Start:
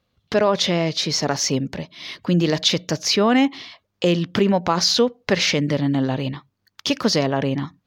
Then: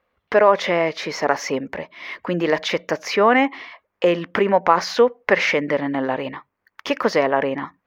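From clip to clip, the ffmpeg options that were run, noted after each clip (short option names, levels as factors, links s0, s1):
-af "equalizer=f=125:t=o:w=1:g=-11,equalizer=f=500:t=o:w=1:g=7,equalizer=f=1000:t=o:w=1:g=8,equalizer=f=2000:t=o:w=1:g=11,equalizer=f=4000:t=o:w=1:g=-8,equalizer=f=8000:t=o:w=1:g=-7,volume=0.631"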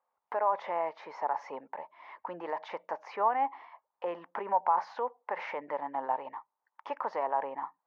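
-af "alimiter=limit=0.376:level=0:latency=1:release=45,bandpass=f=880:t=q:w=5.7:csg=0"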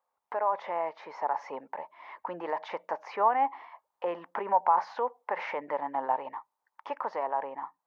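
-af "dynaudnorm=f=200:g=13:m=1.41"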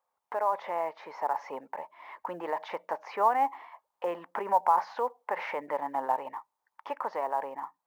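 -af "acrusher=bits=9:mode=log:mix=0:aa=0.000001"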